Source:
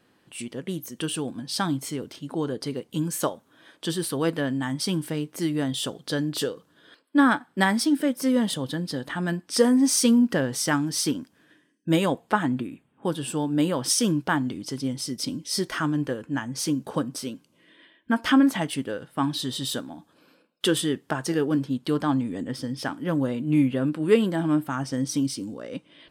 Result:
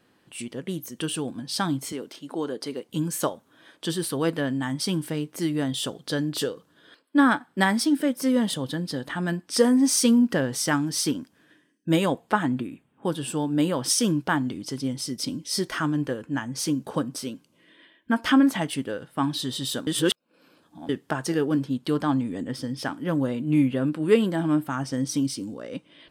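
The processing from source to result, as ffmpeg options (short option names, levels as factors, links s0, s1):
-filter_complex "[0:a]asettb=1/sr,asplit=3[s0][s1][s2];[s0]atrim=end=1.924[s3];[s1]atrim=start=1.92:end=2.89,asetpts=PTS-STARTPTS,afade=t=in:d=0.004:c=qsin,afade=t=out:st=0.966:d=0.004:c=qsin,highpass=260[s4];[s2]atrim=start=2.886[s5];[s3][s4]acrossfade=d=0.004:c1=hsin:c2=qsin[s6];[s6][s5]acrossfade=d=0.004:c1=qsin:c2=hsin,asplit=3[s7][s8][s9];[s7]atrim=end=19.872[s10];[s8]atrim=start=19.868:end=20.892,asetpts=PTS-STARTPTS,areverse[s11];[s9]atrim=start=20.888[s12];[s10][s11]acrossfade=d=0.004:c1=hsin:c2=hsin[s13];[s13][s12]acrossfade=d=0.004:c1=hsin:c2=hsin"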